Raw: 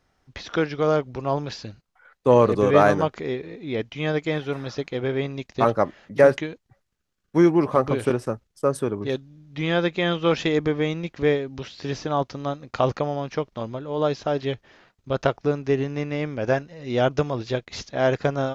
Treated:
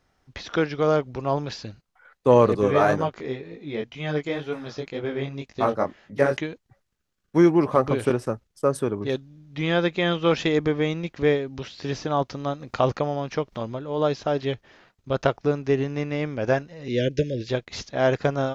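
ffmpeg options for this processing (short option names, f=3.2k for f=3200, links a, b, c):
-filter_complex "[0:a]asettb=1/sr,asplit=3[a][b][c];[a]atrim=end=2.564[d];[b]atrim=start=2.56:end=6.37,asetpts=PTS-STARTPTS,afade=t=in:d=0.004:c=qsin,afade=t=out:st=3.806:d=0.004:c=qsin,flanger=delay=18:depth=5:speed=2[e];[c]atrim=start=6.366[f];[d][e]acrossfade=d=0.004:c1=hsin:c2=qsin[g];[g][f]acrossfade=d=0.004:c1=qsin:c2=hsin,asettb=1/sr,asplit=3[h][i][j];[h]atrim=end=12.054[k];[i]atrim=start=12.05:end=13.75,asetpts=PTS-STARTPTS,afade=t=in:d=0.004:c=qsin,afade=t=out:st=1.696:d=0.004:c=qsin,acompressor=mode=upward:threshold=-30dB:ratio=2.5:attack=3.2:release=140:knee=2.83:detection=peak[l];[j]atrim=start=13.746[m];[k][l]acrossfade=d=0.004:c1=hsin:c2=qsin[n];[n][m]acrossfade=d=0.004:c1=qsin:c2=hsin,asettb=1/sr,asplit=3[o][p][q];[o]atrim=end=16.884[r];[p]atrim=start=16.88:end=17.49,asetpts=PTS-STARTPTS,afade=t=in:d=0.004:c=qsin,afade=t=out:st=0.606:d=0.004:c=qsin,asuperstop=centerf=970:order=20:qfactor=0.98[s];[q]atrim=start=17.486[t];[r][s]acrossfade=d=0.004:c1=hsin:c2=qsin[u];[u][t]acrossfade=d=0.004:c1=qsin:c2=hsin"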